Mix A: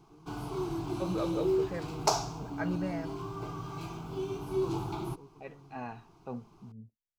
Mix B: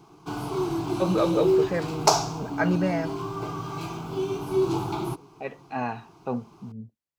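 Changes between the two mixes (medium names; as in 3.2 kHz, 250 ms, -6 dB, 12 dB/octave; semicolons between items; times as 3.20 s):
second voice +11.5 dB; background +8.0 dB; master: add high-pass 130 Hz 6 dB/octave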